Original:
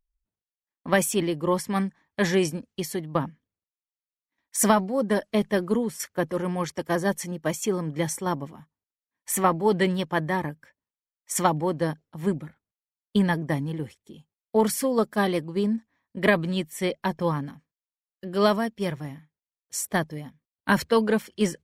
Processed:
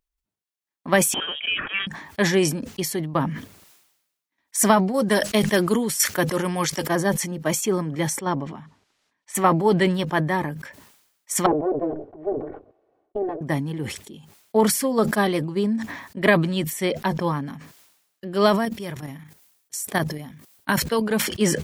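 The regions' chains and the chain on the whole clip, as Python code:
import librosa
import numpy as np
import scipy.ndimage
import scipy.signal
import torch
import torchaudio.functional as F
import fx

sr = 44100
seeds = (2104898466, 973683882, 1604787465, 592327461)

y = fx.chain(x, sr, fx.highpass(hz=690.0, slope=12),
    fx.freq_invert(carrier_hz=3500),
    fx.band_squash(depth_pct=70), at=(1.14, 1.87))
y = fx.chain(y, sr, fx.high_shelf(hz=2200.0, db=10.5),
    fx.overload_stage(gain_db=10.5), at=(4.94, 6.86))
y = fx.chain(y, sr, fx.lowpass(hz=5400.0, slope=12),
    fx.upward_expand(threshold_db=-47.0, expansion=1.5), at=(8.19, 9.35))
y = fx.chain(y, sr, fx.lower_of_two(delay_ms=2.7),
    fx.lowpass_res(hz=540.0, q=4.2),
    fx.low_shelf(hz=200.0, db=-7.5), at=(11.46, 13.41))
y = fx.chain(y, sr, fx.high_shelf(hz=7400.0, db=8.0),
    fx.level_steps(step_db=11), at=(18.65, 21.17))
y = fx.low_shelf(y, sr, hz=70.0, db=-11.5)
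y = fx.notch(y, sr, hz=500.0, q=12.0)
y = fx.sustainer(y, sr, db_per_s=64.0)
y = F.gain(torch.from_numpy(y), 3.0).numpy()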